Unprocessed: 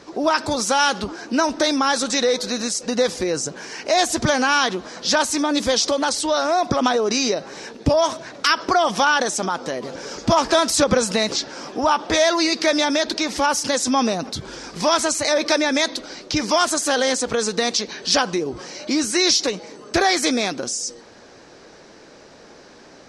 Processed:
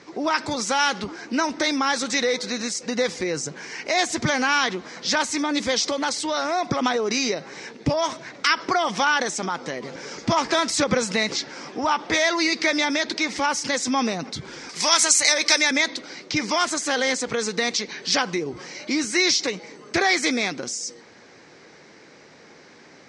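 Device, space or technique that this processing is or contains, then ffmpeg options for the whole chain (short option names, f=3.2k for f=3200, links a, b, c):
car door speaker: -filter_complex "[0:a]asettb=1/sr,asplit=3[a][b][c];[a]atrim=end=14.694[d];[b]atrim=start=14.69:end=15.71,asetpts=PTS-STARTPTS,afade=t=in:d=0.004:c=qsin,afade=t=out:st=1.016:d=0.004:c=qsin,aemphasis=mode=production:type=riaa[e];[c]atrim=start=15.706[f];[d][e]acrossfade=d=0.004:c1=hsin:c2=qsin[g];[g][f]acrossfade=d=0.004:c1=qsin:c2=hsin,highpass=91,equalizer=f=150:t=q:w=4:g=4,equalizer=f=620:t=q:w=4:g=-4,equalizer=f=2.1k:t=q:w=4:g=9,lowpass=f=8.4k:w=0.5412,lowpass=f=8.4k:w=1.3066,volume=-3.5dB"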